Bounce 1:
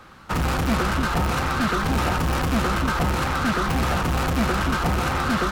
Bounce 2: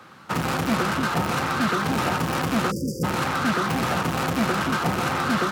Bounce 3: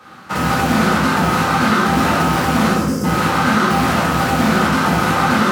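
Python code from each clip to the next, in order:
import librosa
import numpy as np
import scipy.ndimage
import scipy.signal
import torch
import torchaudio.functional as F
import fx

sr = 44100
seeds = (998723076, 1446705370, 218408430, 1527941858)

y1 = scipy.signal.sosfilt(scipy.signal.butter(4, 110.0, 'highpass', fs=sr, output='sos'), x)
y1 = fx.spec_erase(y1, sr, start_s=2.71, length_s=0.33, low_hz=570.0, high_hz=4600.0)
y2 = fx.rev_plate(y1, sr, seeds[0], rt60_s=1.1, hf_ratio=0.8, predelay_ms=0, drr_db=-7.0)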